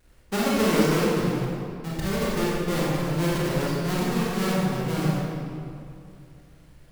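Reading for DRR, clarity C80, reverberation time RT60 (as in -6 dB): -7.0 dB, -1.0 dB, 2.6 s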